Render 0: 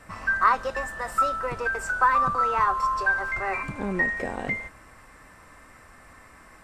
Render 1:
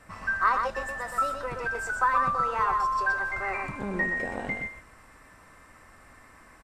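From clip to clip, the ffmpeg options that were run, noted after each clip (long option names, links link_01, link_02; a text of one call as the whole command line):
ffmpeg -i in.wav -af "aecho=1:1:123:0.562,volume=-4dB" out.wav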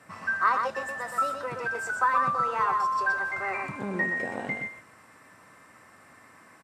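ffmpeg -i in.wav -af "highpass=frequency=110:width=0.5412,highpass=frequency=110:width=1.3066" out.wav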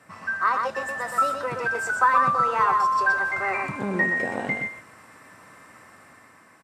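ffmpeg -i in.wav -af "dynaudnorm=framelen=160:gausssize=9:maxgain=5dB" out.wav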